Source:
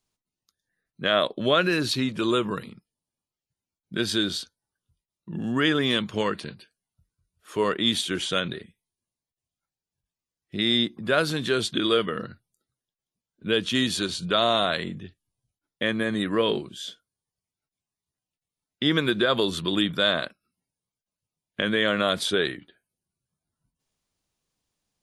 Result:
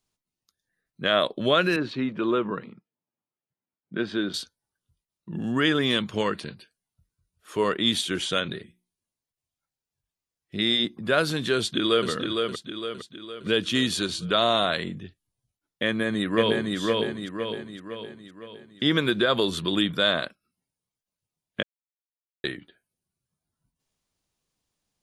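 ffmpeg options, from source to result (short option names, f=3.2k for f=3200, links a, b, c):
-filter_complex "[0:a]asettb=1/sr,asplit=3[a][b][c];[a]atrim=end=1.764[d];[b]atrim=start=1.76:end=4.34,asetpts=PTS-STARTPTS,afade=t=in:d=0.004:c=qsin,afade=t=out:st=2.576:d=0.004:c=qsin,highpass=160,lowpass=2k[e];[c]atrim=start=4.336[f];[d][e]acrossfade=d=0.004:c1=hsin:c2=qsin[g];[g][f]acrossfade=d=0.004:c1=qsin:c2=hsin,asettb=1/sr,asplit=3[h][i][j];[h]atrim=end=8.354[k];[i]atrim=start=8.35:end=10.85,asetpts=PTS-STARTPTS,afade=t=in:d=0.004:c=qsin,afade=t=out:st=2.496:d=0.004:c=qsin,bandreject=f=60:t=h:w=6,bandreject=f=120:t=h:w=6,bandreject=f=180:t=h:w=6,bandreject=f=240:t=h:w=6,bandreject=f=300:t=h:w=6,bandreject=f=360:t=h:w=6[l];[j]atrim=start=10.846[m];[k][l]acrossfade=d=0.004:c1=hsin:c2=qsin[n];[n][m]acrossfade=d=0.004:c1=qsin:c2=hsin,asplit=2[o][p];[p]afade=t=in:st=11.56:d=0.01,afade=t=out:st=12.09:d=0.01,aecho=0:1:460|920|1380|1840|2300|2760:0.595662|0.297831|0.148916|0.0744578|0.0372289|0.0186144[q];[o][q]amix=inputs=2:normalize=0,asplit=2[r][s];[s]afade=t=in:st=15.86:d=0.01,afade=t=out:st=16.77:d=0.01,aecho=0:1:510|1020|1530|2040|2550|3060|3570:0.794328|0.397164|0.198582|0.099291|0.0496455|0.0248228|0.0124114[t];[r][t]amix=inputs=2:normalize=0,asplit=3[u][v][w];[u]atrim=end=21.63,asetpts=PTS-STARTPTS,afade=t=out:st=21.626:d=0.004:c=hsin[x];[v]atrim=start=21.63:end=22.44,asetpts=PTS-STARTPTS,volume=0[y];[w]atrim=start=22.44,asetpts=PTS-STARTPTS,afade=t=in:d=0.004:c=hsin[z];[x][y][z]concat=n=3:v=0:a=1"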